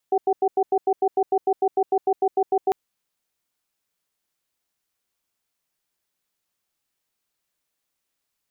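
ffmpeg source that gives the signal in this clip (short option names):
-f lavfi -i "aevalsrc='0.112*(sin(2*PI*392*t)+sin(2*PI*757*t))*clip(min(mod(t,0.15),0.06-mod(t,0.15))/0.005,0,1)':d=2.6:s=44100"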